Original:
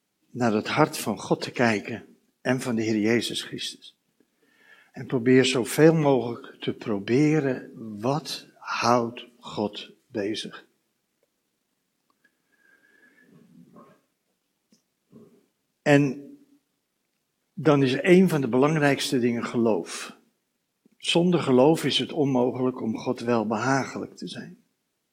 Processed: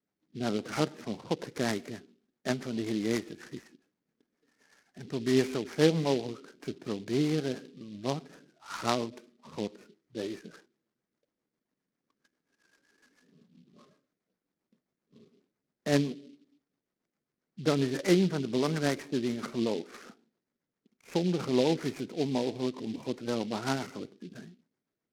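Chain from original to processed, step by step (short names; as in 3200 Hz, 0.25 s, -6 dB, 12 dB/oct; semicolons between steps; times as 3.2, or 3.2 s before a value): steep low-pass 2300 Hz 72 dB/oct; rotary speaker horn 7.5 Hz; noise-modulated delay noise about 3400 Hz, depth 0.066 ms; gain -6 dB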